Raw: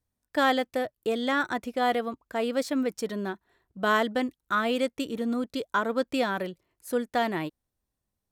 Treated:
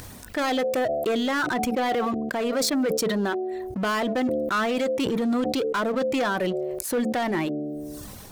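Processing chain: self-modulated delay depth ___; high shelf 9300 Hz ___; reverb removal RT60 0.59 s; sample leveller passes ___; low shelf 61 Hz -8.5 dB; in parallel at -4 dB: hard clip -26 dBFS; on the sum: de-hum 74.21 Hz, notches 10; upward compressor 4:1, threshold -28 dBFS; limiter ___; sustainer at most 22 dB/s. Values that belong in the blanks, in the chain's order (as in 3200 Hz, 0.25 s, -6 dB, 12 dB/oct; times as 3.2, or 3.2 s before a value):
0.12 ms, -2 dB, 2, -19 dBFS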